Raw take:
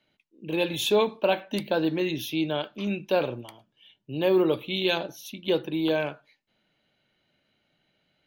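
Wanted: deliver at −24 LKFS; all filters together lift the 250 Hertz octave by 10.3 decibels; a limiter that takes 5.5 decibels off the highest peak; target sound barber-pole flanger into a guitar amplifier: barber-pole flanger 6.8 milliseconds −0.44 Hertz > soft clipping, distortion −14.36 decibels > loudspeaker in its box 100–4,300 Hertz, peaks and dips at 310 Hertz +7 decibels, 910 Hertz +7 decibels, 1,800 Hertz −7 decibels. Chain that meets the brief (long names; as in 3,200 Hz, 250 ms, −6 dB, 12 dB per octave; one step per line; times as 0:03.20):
parametric band 250 Hz +8.5 dB
brickwall limiter −14.5 dBFS
barber-pole flanger 6.8 ms −0.44 Hz
soft clipping −23 dBFS
loudspeaker in its box 100–4,300 Hz, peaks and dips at 310 Hz +7 dB, 910 Hz +7 dB, 1,800 Hz −7 dB
level +4 dB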